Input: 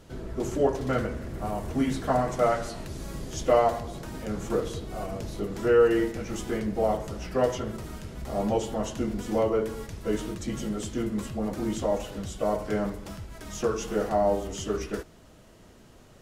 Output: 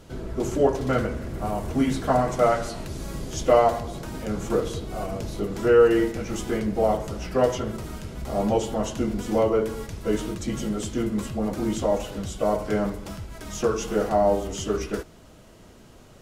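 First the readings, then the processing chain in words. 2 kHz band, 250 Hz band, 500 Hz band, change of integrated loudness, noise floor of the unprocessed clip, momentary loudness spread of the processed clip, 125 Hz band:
+3.0 dB, +3.5 dB, +3.5 dB, +3.5 dB, −53 dBFS, 13 LU, +3.5 dB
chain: notch filter 1,800 Hz, Q 19
level +3.5 dB

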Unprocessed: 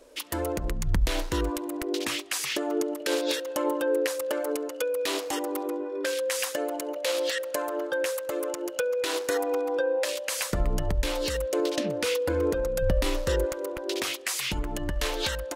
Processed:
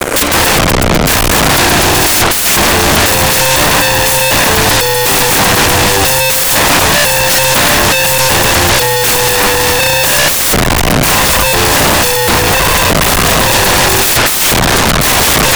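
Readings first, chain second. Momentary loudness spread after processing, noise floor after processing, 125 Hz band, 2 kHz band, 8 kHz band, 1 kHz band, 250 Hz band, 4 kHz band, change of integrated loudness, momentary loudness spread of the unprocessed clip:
1 LU, −11 dBFS, +20.5 dB, +24.5 dB, +25.5 dB, +25.0 dB, +16.0 dB, +23.5 dB, +21.0 dB, 5 LU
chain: sub-octave generator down 2 octaves, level −4 dB
flat-topped bell 4,200 Hz −10.5 dB 1.2 octaves
fuzz pedal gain 44 dB, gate −51 dBFS
notch comb filter 880 Hz
sine wavefolder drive 18 dB, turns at −8 dBFS
level +3.5 dB

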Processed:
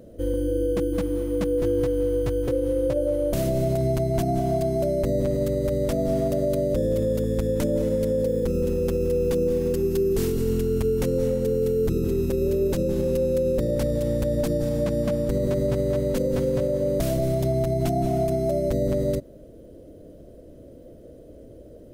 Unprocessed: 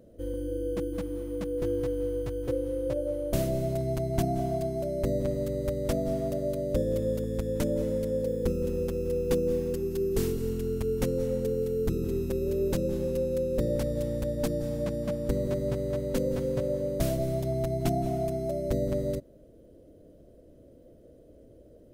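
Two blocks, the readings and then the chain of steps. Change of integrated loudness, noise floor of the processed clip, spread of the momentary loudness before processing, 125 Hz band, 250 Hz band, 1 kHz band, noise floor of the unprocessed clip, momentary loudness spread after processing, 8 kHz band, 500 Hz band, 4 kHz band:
+6.0 dB, −46 dBFS, 3 LU, +5.5 dB, +6.0 dB, +5.5 dB, −54 dBFS, 2 LU, +4.0 dB, +6.0 dB, +4.5 dB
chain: brickwall limiter −24 dBFS, peak gain reduction 9.5 dB
level +8.5 dB

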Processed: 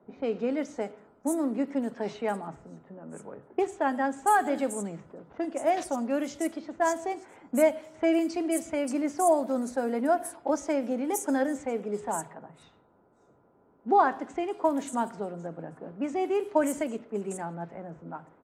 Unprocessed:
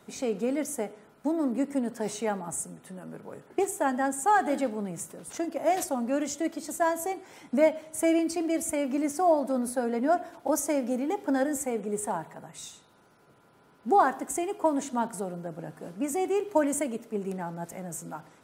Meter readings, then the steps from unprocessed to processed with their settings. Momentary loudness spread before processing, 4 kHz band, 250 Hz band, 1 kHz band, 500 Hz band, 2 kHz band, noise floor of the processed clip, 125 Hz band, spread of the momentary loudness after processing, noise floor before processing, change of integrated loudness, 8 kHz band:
14 LU, −2.5 dB, −0.5 dB, 0.0 dB, 0.0 dB, 0.0 dB, −63 dBFS, −2.0 dB, 17 LU, −60 dBFS, 0.0 dB, −4.5 dB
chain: three-band delay without the direct sound mids, lows, highs 30/580 ms, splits 150/5,800 Hz
low-pass that shuts in the quiet parts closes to 700 Hz, open at −24.5 dBFS

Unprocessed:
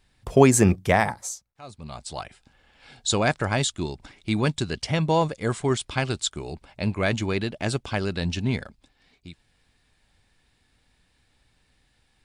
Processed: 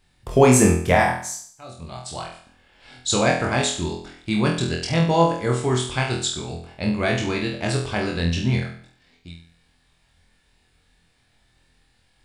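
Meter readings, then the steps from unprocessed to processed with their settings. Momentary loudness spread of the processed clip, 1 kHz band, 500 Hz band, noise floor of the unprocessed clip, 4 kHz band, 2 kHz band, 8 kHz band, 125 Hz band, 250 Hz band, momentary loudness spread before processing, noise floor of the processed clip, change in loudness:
17 LU, +4.0 dB, +3.0 dB, −67 dBFS, +3.0 dB, +3.0 dB, +3.5 dB, +3.0 dB, +3.0 dB, 17 LU, −63 dBFS, +3.0 dB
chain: flutter between parallel walls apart 4.1 metres, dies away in 0.52 s

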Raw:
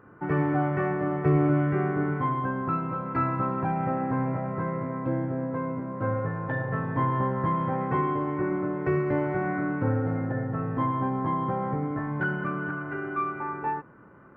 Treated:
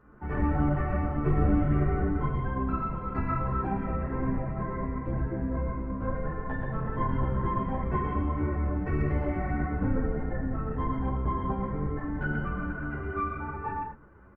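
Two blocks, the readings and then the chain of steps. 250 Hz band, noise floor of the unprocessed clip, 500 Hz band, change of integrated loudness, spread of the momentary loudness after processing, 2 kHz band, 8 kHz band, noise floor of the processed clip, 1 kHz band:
−3.0 dB, −51 dBFS, −5.5 dB, −2.5 dB, 7 LU, −5.0 dB, can't be measured, −38 dBFS, −4.5 dB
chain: sub-octave generator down 2 octaves, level +4 dB
single-tap delay 123 ms −3 dB
string-ensemble chorus
level −3 dB

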